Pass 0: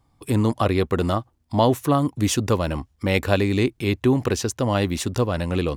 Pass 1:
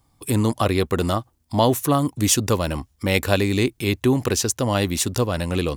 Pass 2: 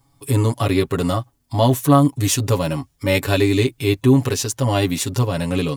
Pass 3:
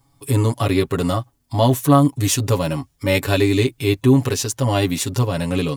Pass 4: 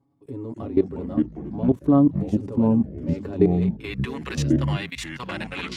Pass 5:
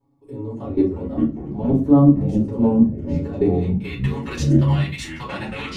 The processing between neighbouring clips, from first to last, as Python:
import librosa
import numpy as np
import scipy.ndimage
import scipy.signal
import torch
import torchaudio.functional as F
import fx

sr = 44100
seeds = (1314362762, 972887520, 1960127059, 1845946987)

y1 = fx.high_shelf(x, sr, hz=5100.0, db=11.5)
y2 = y1 + 0.93 * np.pad(y1, (int(7.2 * sr / 1000.0), 0))[:len(y1)]
y2 = fx.hpss(y2, sr, part='harmonic', gain_db=7)
y2 = F.gain(torch.from_numpy(y2), -5.0).numpy()
y3 = y2
y4 = fx.filter_sweep_bandpass(y3, sr, from_hz=310.0, to_hz=2000.0, start_s=3.39, end_s=3.98, q=1.5)
y4 = fx.level_steps(y4, sr, step_db=18)
y4 = fx.echo_pitch(y4, sr, ms=204, semitones=-4, count=3, db_per_echo=-3.0)
y4 = F.gain(torch.from_numpy(y4), 3.5).numpy()
y5 = fx.room_shoebox(y4, sr, seeds[0], volume_m3=120.0, walls='furnished', distance_m=4.3)
y5 = F.gain(torch.from_numpy(y5), -7.5).numpy()